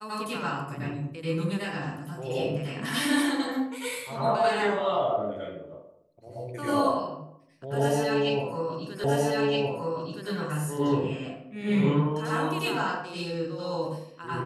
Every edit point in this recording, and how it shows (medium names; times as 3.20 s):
9.04 s: repeat of the last 1.27 s